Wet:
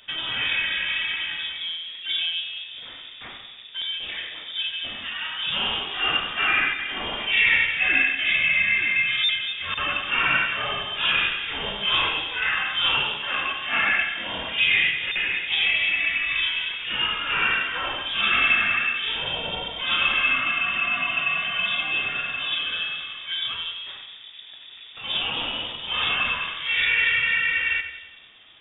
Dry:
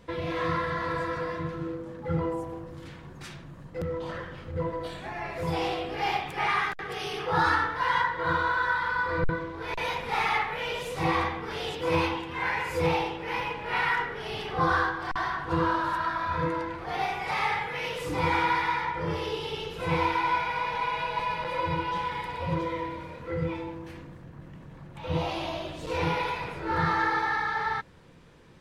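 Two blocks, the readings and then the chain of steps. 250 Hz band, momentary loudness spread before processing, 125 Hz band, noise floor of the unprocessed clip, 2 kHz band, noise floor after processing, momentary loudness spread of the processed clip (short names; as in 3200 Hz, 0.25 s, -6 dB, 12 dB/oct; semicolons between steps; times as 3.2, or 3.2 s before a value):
-8.5 dB, 11 LU, -11.0 dB, -46 dBFS, +9.5 dB, -43 dBFS, 12 LU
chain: low shelf 360 Hz -7.5 dB; on a send: split-band echo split 590 Hz, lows 0.232 s, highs 93 ms, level -9.5 dB; on the sum: inverted band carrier 3600 Hz; gain +5.5 dB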